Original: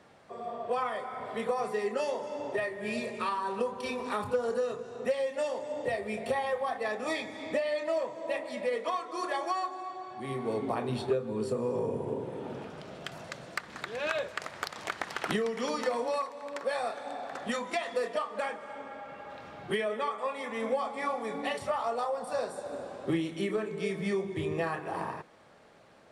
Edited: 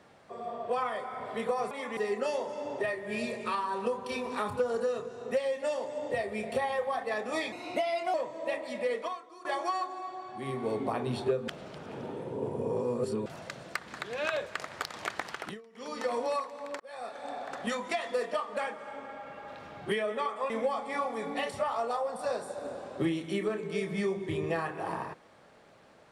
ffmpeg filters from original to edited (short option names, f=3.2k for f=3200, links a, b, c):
-filter_complex "[0:a]asplit=12[a][b][c][d][e][f][g][h][i][j][k][l];[a]atrim=end=1.712[m];[b]atrim=start=20.318:end=20.582[n];[c]atrim=start=1.708:end=7.264[o];[d]atrim=start=7.26:end=7.96,asetpts=PTS-STARTPTS,asetrate=49833,aresample=44100[p];[e]atrim=start=7.956:end=9.27,asetpts=PTS-STARTPTS,afade=t=out:st=0.834:d=0.48:c=qua:silence=0.133352[q];[f]atrim=start=9.27:end=11.302,asetpts=PTS-STARTPTS,afade=t=in:d=0.004:c=hsin:silence=0.133352[r];[g]atrim=start=11.298:end=13.082,asetpts=PTS-STARTPTS,areverse[s];[h]atrim=start=13.078:end=15.44,asetpts=PTS-STARTPTS,afade=t=out:st=1.932:d=0.43:silence=0.0668344[t];[i]atrim=start=15.44:end=15.54,asetpts=PTS-STARTPTS,volume=-23.5dB[u];[j]atrim=start=15.54:end=16.62,asetpts=PTS-STARTPTS,afade=t=in:d=0.43:silence=0.0668344,afade=t=out:st=1.076:d=0.004:c=hsin[v];[k]atrim=start=16.62:end=20.322,asetpts=PTS-STARTPTS,afade=t=in:d=0.51[w];[l]atrim=start=20.578[x];[m][n]acrossfade=d=0.004:c1=hsin:c2=hsin[y];[y][o]acrossfade=d=0.004:c1=hsin:c2=hsin[z];[z][p]acrossfade=d=0.004:c1=hsin:c2=hsin[aa];[q][r]concat=n=2:v=0:a=1[ab];[aa][ab]acrossfade=d=0.004:c1=hsin:c2=hsin[ac];[ac][s]acrossfade=d=0.004:c1=hsin:c2=hsin[ad];[t][u][v][w]concat=n=4:v=0:a=1[ae];[ad][ae]acrossfade=d=0.004:c1=hsin:c2=hsin[af];[af][x]acrossfade=d=0.004:c1=hsin:c2=hsin"